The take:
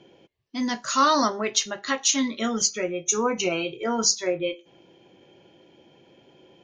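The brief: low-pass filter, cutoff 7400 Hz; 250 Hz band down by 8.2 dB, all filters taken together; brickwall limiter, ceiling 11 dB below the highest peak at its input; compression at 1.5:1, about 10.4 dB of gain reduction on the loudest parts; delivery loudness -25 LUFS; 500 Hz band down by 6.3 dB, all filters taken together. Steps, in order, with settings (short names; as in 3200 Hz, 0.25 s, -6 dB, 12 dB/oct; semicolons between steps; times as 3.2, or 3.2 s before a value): LPF 7400 Hz; bell 250 Hz -8 dB; bell 500 Hz -5.5 dB; compressor 1.5:1, threshold -47 dBFS; gain +13.5 dB; limiter -14.5 dBFS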